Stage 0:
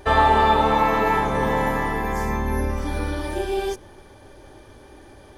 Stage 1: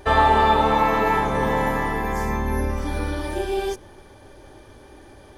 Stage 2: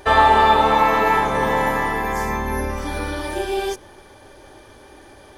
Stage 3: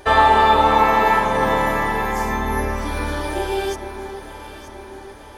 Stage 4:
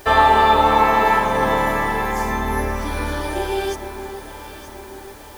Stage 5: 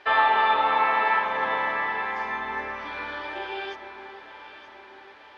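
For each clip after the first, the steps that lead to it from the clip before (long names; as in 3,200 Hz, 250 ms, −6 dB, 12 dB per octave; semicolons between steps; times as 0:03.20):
no processing that can be heard
low-shelf EQ 360 Hz −7.5 dB; level +4.5 dB
delay that swaps between a low-pass and a high-pass 463 ms, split 1,400 Hz, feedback 70%, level −9 dB
bit-depth reduction 8 bits, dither triangular
resonant band-pass 2,700 Hz, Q 0.79; high-frequency loss of the air 310 metres; level +1.5 dB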